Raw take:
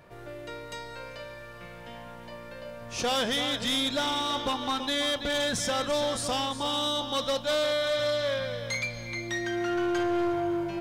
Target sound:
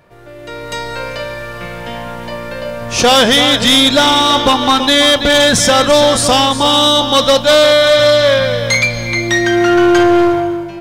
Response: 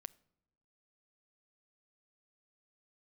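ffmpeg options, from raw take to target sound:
-af "dynaudnorm=f=110:g=11:m=14dB,volume=4.5dB"

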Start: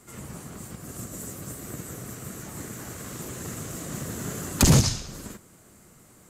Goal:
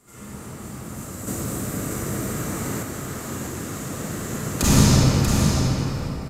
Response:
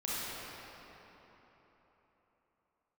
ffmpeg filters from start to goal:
-filter_complex "[1:a]atrim=start_sample=2205[a];[0:a][a]afir=irnorm=-1:irlink=0,asettb=1/sr,asplit=3[b][c][d];[b]atrim=end=1.274[e];[c]atrim=start=1.27:end=2.83,asetpts=PTS-STARTPTS,afade=t=in:d=0.004:c=qsin,afade=t=out:st=1.556:d=0.004:c=qsin,acontrast=37[f];[d]atrim=start=2.826[g];[e][f]acrossfade=d=0.004:c1=hsin:c2=qsin[h];[h][g]acrossfade=d=0.004:c1=qsin:c2=hsin,aecho=1:1:638:0.501,volume=-1dB"

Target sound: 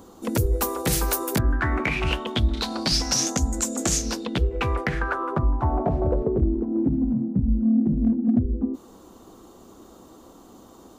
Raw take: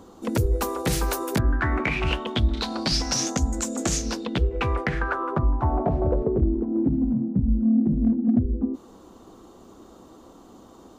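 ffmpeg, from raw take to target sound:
-af "highshelf=f=9.1k:g=11"

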